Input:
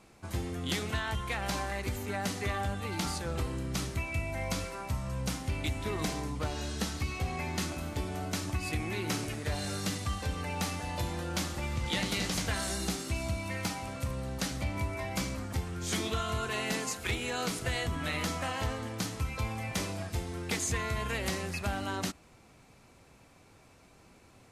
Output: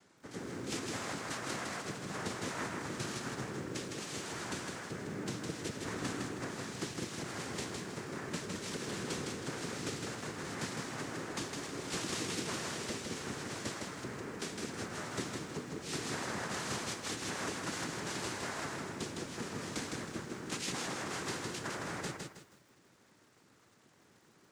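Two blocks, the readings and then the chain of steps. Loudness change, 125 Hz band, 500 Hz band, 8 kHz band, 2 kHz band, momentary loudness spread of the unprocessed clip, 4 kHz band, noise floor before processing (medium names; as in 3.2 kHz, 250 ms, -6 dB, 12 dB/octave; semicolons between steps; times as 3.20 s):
-5.5 dB, -10.5 dB, -4.0 dB, -3.0 dB, -4.5 dB, 4 LU, -4.5 dB, -59 dBFS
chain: noise-vocoded speech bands 3; bit-crushed delay 159 ms, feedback 35%, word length 10-bit, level -3.5 dB; trim -6 dB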